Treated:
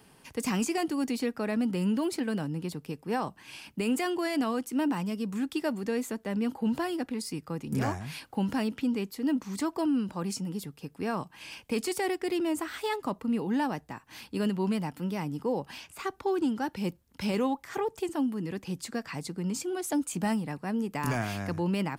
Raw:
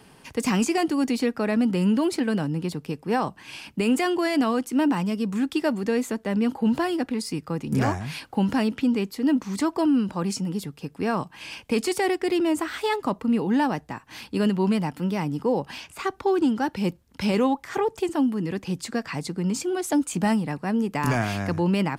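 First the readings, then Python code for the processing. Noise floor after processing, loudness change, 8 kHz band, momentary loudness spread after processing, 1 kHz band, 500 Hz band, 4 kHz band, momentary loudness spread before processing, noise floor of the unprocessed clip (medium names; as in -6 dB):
-60 dBFS, -6.5 dB, -4.0 dB, 8 LU, -6.5 dB, -6.5 dB, -6.0 dB, 8 LU, -53 dBFS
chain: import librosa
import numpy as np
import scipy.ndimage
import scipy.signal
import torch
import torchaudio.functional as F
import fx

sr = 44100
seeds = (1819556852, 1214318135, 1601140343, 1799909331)

y = fx.high_shelf(x, sr, hz=11000.0, db=9.0)
y = F.gain(torch.from_numpy(y), -6.5).numpy()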